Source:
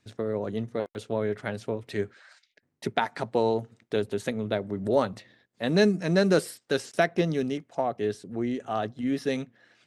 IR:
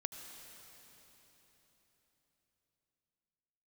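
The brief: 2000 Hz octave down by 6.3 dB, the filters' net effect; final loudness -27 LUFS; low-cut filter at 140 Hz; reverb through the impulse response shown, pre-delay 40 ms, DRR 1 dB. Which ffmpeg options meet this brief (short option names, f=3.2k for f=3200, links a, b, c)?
-filter_complex "[0:a]highpass=140,equalizer=f=2k:t=o:g=-8.5,asplit=2[a][b];[1:a]atrim=start_sample=2205,adelay=40[c];[b][c]afir=irnorm=-1:irlink=0,volume=0dB[d];[a][d]amix=inputs=2:normalize=0"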